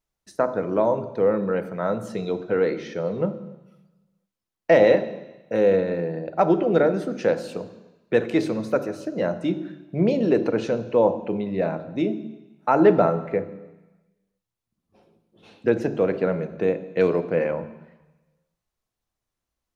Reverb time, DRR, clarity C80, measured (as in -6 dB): 1.0 s, 11.0 dB, 15.0 dB